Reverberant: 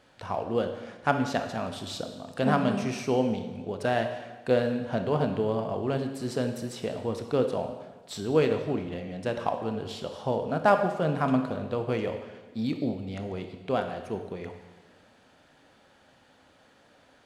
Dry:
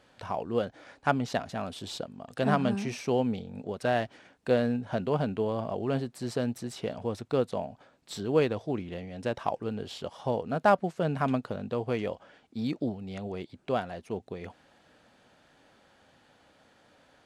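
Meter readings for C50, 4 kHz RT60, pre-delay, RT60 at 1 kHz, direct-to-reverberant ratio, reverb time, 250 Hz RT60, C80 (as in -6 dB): 7.5 dB, 1.2 s, 23 ms, 1.3 s, 6.0 dB, 1.3 s, 1.4 s, 9.5 dB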